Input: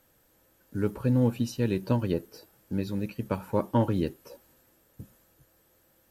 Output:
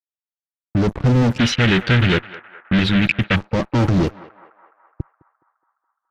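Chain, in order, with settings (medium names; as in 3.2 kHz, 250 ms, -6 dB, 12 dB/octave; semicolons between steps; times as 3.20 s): expander on every frequency bin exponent 1.5; fuzz box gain 41 dB, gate -46 dBFS; peak limiter -15.5 dBFS, peak gain reduction 5 dB; FFT filter 150 Hz 0 dB, 680 Hz -8 dB, 6 kHz -8 dB, 11 kHz -24 dB; band-passed feedback delay 209 ms, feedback 69%, band-pass 1.2 kHz, level -15 dB; level-controlled noise filter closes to 2 kHz, open at -18 dBFS; 1.38–3.36 s: high-order bell 2.3 kHz +15.5 dB; trim +6 dB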